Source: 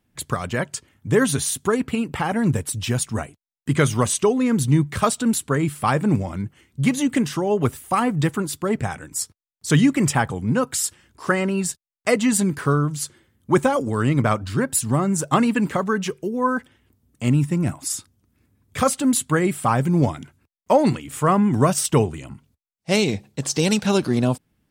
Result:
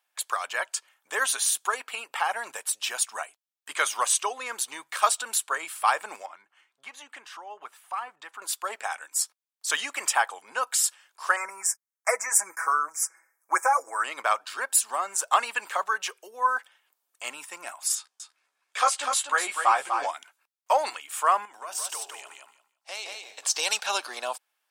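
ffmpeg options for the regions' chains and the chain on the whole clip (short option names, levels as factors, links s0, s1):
-filter_complex "[0:a]asettb=1/sr,asplit=3[s0][s1][s2];[s0]atrim=end=6.264[s3];[s1]atrim=start=6.26:end=8.42,asetpts=PTS-STARTPTS,afade=t=in:d=0.004:c=qsin,afade=t=out:st=2.156:d=0.004:c=qsin,acompressor=threshold=0.0141:ratio=1.5:attack=3.2:release=140:knee=1:detection=peak,lowpass=f=1700:p=1,equalizer=f=530:t=o:w=0.85:g=-6[s4];[s2]atrim=start=8.416[s5];[s3][s4]acrossfade=d=0.004:c1=hsin:c2=qsin[s6];[s6][s5]acrossfade=d=0.004:c1=qsin:c2=hsin,asettb=1/sr,asplit=3[s7][s8][s9];[s7]atrim=end=11.364[s10];[s8]atrim=start=11.36:end=14.04,asetpts=PTS-STARTPTS,afade=t=in:d=0.004:c=qsin,afade=t=out:st=2.676:d=0.004:c=qsin,asuperstop=centerf=3500:order=12:qfactor=1.2,lowshelf=f=170:g=-12,aecho=1:1:6.1:0.77,atrim=end_sample=118188[s11];[s9]atrim=start=14.036[s12];[s10][s11]acrossfade=d=0.004:c1=hsin:c2=qsin[s13];[s13][s12]acrossfade=d=0.004:c1=qsin:c2=hsin,asettb=1/sr,asplit=3[s14][s15][s16];[s14]atrim=end=17.954[s17];[s15]atrim=start=17.95:end=20.11,asetpts=PTS-STARTPTS,afade=t=in:d=0.004:c=qsin,afade=t=out:st=2.156:d=0.004:c=qsin,lowpass=7600,asplit=2[s18][s19];[s19]adelay=14,volume=0.562[s20];[s18][s20]amix=inputs=2:normalize=0,atrim=end_sample=95256,aecho=1:1:247:0.473,atrim=end_sample=95256[s21];[s16]atrim=start=20.106[s22];[s17][s21]acrossfade=d=0.004:c1=hsin:c2=qsin[s23];[s23][s22]acrossfade=d=0.004:c1=qsin:c2=hsin,asettb=1/sr,asplit=3[s24][s25][s26];[s24]atrim=end=21.454[s27];[s25]atrim=start=21.45:end=23.45,asetpts=PTS-STARTPTS,afade=t=in:d=0.004:c=qsin,afade=t=out:st=1.996:d=0.004:c=qsin,bandreject=f=60:t=h:w=6,bandreject=f=120:t=h:w=6,bandreject=f=180:t=h:w=6,bandreject=f=240:t=h:w=6,bandreject=f=300:t=h:w=6,bandreject=f=360:t=h:w=6,bandreject=f=420:t=h:w=6,acompressor=threshold=0.0501:ratio=12:attack=3.2:release=140:knee=1:detection=peak,aecho=1:1:171|342|513:0.631|0.107|0.0182,atrim=end_sample=88200[s28];[s26]atrim=start=23.446[s29];[s27][s28]acrossfade=d=0.004:c1=hsin:c2=qsin[s30];[s30][s29]acrossfade=d=0.004:c1=qsin:c2=hsin,highpass=f=740:w=0.5412,highpass=f=740:w=1.3066,bandreject=f=2000:w=15"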